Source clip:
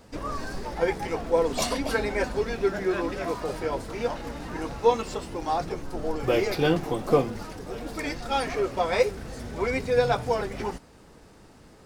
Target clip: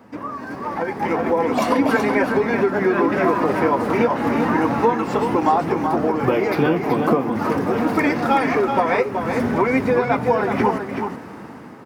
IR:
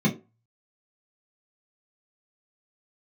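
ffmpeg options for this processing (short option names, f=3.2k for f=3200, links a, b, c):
-af "acompressor=threshold=-32dB:ratio=10,equalizer=f=250:t=o:w=1:g=9,equalizer=f=1k:t=o:w=1:g=8,equalizer=f=2k:t=o:w=1:g=5,equalizer=f=4k:t=o:w=1:g=-6,equalizer=f=8k:t=o:w=1:g=-9,aecho=1:1:377:0.473,dynaudnorm=f=280:g=7:m=12.5dB,highpass=f=92:w=0.5412,highpass=f=92:w=1.3066"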